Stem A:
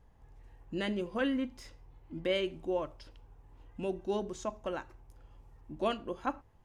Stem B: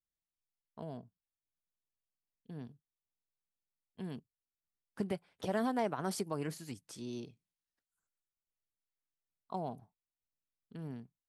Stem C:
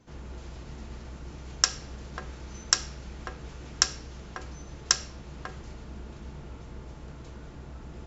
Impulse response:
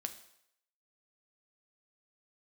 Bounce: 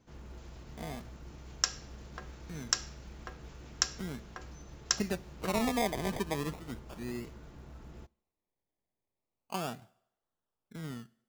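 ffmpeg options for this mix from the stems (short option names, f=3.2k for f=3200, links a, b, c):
-filter_complex "[1:a]acrusher=samples=25:mix=1:aa=0.000001:lfo=1:lforange=15:lforate=0.37,volume=0dB,asplit=2[a][b];[b]volume=-7.5dB[c];[2:a]acrusher=bits=8:mode=log:mix=0:aa=0.000001,volume=-8dB,asplit=2[d][e];[e]volume=-12.5dB[f];[3:a]atrim=start_sample=2205[g];[c][f]amix=inputs=2:normalize=0[h];[h][g]afir=irnorm=-1:irlink=0[i];[a][d][i]amix=inputs=3:normalize=0"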